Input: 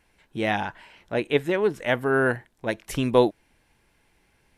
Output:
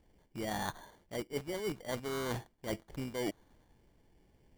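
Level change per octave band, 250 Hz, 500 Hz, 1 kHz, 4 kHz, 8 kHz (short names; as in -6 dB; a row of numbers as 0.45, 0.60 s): -13.0, -15.5, -13.5, -9.5, -2.5 dB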